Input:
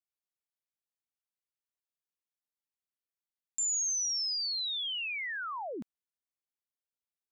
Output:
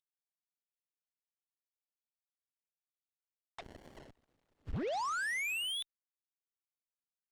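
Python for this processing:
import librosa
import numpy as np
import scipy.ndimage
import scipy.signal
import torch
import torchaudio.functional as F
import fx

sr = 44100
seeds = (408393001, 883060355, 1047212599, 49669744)

y = fx.cvsd(x, sr, bps=64000)
y = scipy.signal.sosfilt(scipy.signal.butter(2, 44.0, 'highpass', fs=sr, output='sos'), y)
y = fx.freq_invert(y, sr, carrier_hz=3700)
y = fx.cheby_harmonics(y, sr, harmonics=(3, 7), levels_db=(-43, -15), full_scale_db=-31.0)
y = fx.running_max(y, sr, window=33, at=(3.61, 4.83))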